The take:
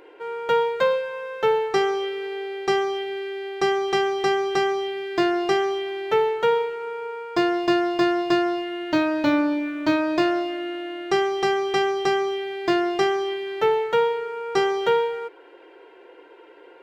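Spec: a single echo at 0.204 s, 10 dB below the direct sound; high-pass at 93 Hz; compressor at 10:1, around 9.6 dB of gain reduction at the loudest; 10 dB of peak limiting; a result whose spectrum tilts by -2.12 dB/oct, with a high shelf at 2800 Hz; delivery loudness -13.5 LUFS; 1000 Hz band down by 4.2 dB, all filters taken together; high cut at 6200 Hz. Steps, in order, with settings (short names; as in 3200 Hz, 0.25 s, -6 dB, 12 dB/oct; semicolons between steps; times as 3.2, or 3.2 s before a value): HPF 93 Hz; LPF 6200 Hz; bell 1000 Hz -5 dB; high shelf 2800 Hz -6.5 dB; compressor 10:1, threshold -27 dBFS; limiter -27 dBFS; echo 0.204 s -10 dB; gain +18.5 dB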